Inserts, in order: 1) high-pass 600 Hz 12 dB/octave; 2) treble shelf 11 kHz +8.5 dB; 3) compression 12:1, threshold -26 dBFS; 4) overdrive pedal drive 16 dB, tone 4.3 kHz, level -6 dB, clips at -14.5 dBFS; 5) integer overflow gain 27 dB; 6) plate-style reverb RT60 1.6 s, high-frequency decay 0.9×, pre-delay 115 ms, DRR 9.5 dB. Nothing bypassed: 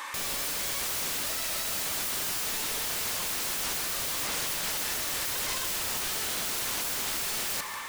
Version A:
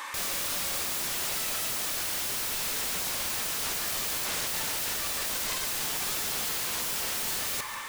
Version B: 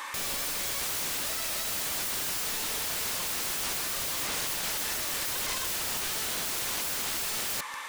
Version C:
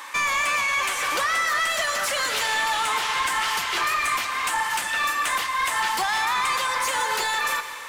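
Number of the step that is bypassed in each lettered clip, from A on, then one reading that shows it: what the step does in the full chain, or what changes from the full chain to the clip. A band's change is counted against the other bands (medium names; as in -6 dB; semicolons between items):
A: 3, mean gain reduction 4.5 dB; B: 6, crest factor change -4.5 dB; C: 5, 1 kHz band +13.5 dB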